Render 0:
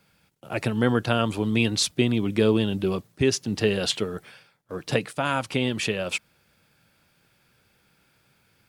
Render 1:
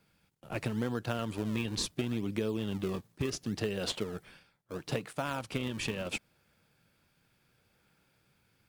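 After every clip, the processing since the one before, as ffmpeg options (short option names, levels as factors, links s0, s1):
-filter_complex "[0:a]asplit=2[s0][s1];[s1]acrusher=samples=37:mix=1:aa=0.000001:lfo=1:lforange=59.2:lforate=0.73,volume=0.398[s2];[s0][s2]amix=inputs=2:normalize=0,acompressor=threshold=0.0891:ratio=6,volume=0.398"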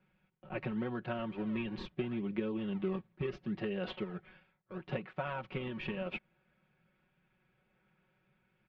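-af "lowpass=f=2800:w=0.5412,lowpass=f=2800:w=1.3066,aecho=1:1:5.4:0.98,volume=0.531"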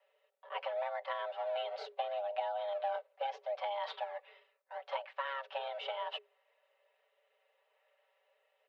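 -af "afreqshift=410,volume=0.891"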